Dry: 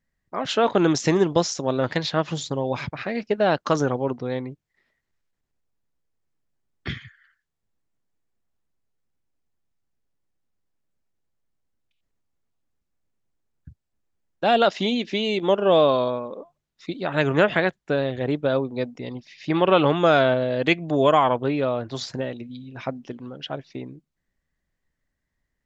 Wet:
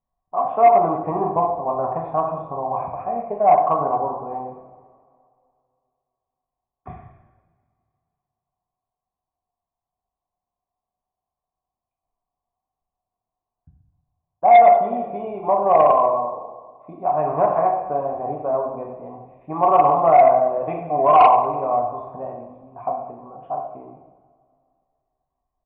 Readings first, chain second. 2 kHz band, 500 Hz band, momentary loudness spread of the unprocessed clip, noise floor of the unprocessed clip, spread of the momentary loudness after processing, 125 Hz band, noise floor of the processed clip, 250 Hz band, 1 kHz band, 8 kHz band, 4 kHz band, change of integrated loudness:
-8.0 dB, +2.5 dB, 18 LU, -80 dBFS, 19 LU, -7.5 dB, under -85 dBFS, -8.0 dB, +10.5 dB, no reading, under -15 dB, +4.0 dB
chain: cascade formant filter a; bass shelf 100 Hz +10.5 dB; two-slope reverb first 0.83 s, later 2.5 s, DRR -1 dB; Chebyshev shaper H 5 -13 dB, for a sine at -8 dBFS; distance through air 470 m; frequency-shifting echo 97 ms, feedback 58%, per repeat -35 Hz, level -20.5 dB; trim +8 dB

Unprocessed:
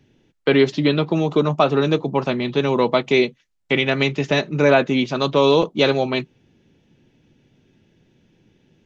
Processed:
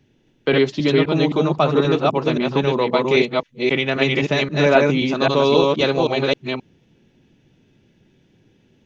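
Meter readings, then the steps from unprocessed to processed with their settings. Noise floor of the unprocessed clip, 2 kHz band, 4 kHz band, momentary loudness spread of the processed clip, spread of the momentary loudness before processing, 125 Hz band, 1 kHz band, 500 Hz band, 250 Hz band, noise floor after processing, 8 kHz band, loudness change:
-64 dBFS, +1.0 dB, +1.0 dB, 6 LU, 6 LU, +1.0 dB, +1.0 dB, +1.0 dB, +0.5 dB, -60 dBFS, no reading, +0.5 dB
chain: chunks repeated in reverse 264 ms, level -1 dB; trim -1.5 dB

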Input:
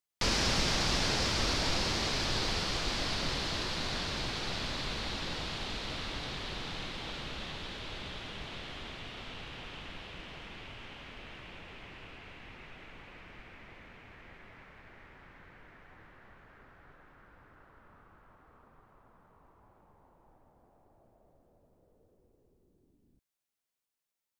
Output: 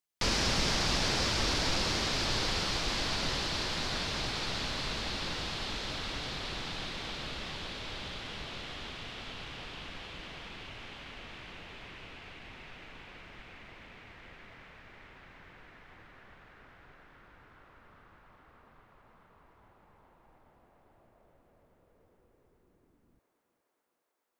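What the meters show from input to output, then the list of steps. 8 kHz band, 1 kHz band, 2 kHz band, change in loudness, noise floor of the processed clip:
+1.0 dB, +1.0 dB, +1.0 dB, +0.5 dB, -79 dBFS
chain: thinning echo 415 ms, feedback 83%, high-pass 340 Hz, level -10.5 dB

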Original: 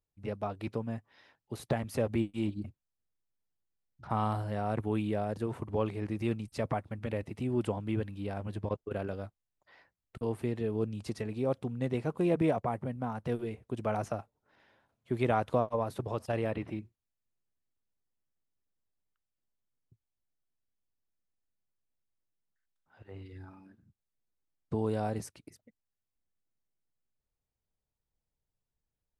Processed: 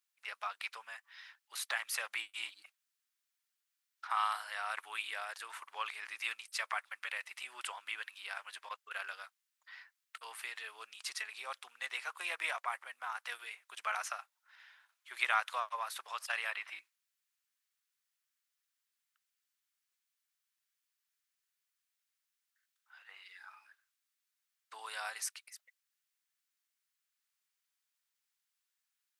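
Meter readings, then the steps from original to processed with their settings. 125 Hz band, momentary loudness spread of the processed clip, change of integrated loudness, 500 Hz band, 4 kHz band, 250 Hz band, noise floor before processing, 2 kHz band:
under -40 dB, 18 LU, -5.5 dB, -20.5 dB, +9.0 dB, under -40 dB, under -85 dBFS, +8.5 dB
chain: high-pass 1.3 kHz 24 dB/octave; trim +9 dB

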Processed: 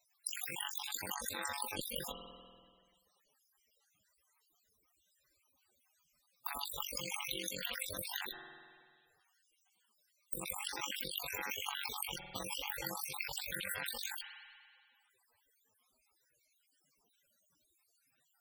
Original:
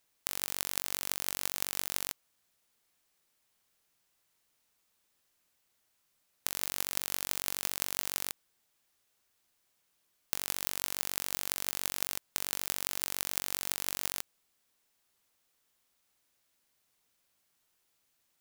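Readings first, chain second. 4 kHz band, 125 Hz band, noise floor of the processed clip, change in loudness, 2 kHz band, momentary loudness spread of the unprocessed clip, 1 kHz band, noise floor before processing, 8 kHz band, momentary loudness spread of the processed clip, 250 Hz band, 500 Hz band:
-2.5 dB, -1.5 dB, -78 dBFS, -6.0 dB, -0.5 dB, 4 LU, +0.5 dB, -76 dBFS, -7.5 dB, 8 LU, -0.5 dB, 0.0 dB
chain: random holes in the spectrogram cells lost 60%; Chebyshev shaper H 5 -40 dB, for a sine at -6.5 dBFS; in parallel at -6.5 dB: integer overflow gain 21.5 dB; on the sum: spring tank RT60 1.9 s, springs 48 ms, chirp 60 ms, DRR 6 dB; loudest bins only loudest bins 32; trim +7.5 dB

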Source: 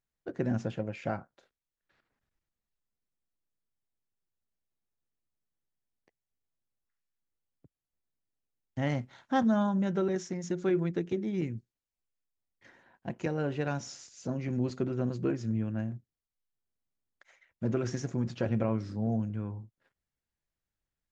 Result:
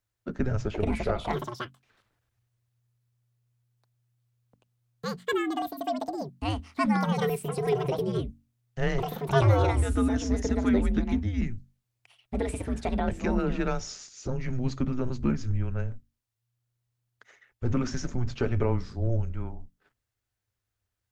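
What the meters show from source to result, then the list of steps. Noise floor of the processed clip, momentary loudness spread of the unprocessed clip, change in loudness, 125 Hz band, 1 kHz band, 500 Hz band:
-84 dBFS, 11 LU, +3.5 dB, +6.5 dB, +7.5 dB, +5.0 dB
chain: ever faster or slower copies 564 ms, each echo +7 st, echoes 2; hum notches 50/100/150/200/250/300/350/400 Hz; frequency shift -120 Hz; trim +5 dB

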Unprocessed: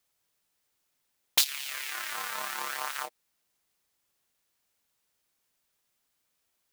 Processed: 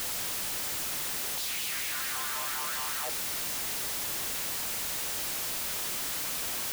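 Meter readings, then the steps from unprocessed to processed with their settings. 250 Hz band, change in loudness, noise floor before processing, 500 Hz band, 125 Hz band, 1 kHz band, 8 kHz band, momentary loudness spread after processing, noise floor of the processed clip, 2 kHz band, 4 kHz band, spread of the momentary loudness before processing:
+13.0 dB, 0.0 dB, -78 dBFS, +7.0 dB, no reading, +1.0 dB, +6.5 dB, 0 LU, -34 dBFS, +2.0 dB, +1.5 dB, 10 LU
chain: one-bit comparator; trim +5.5 dB

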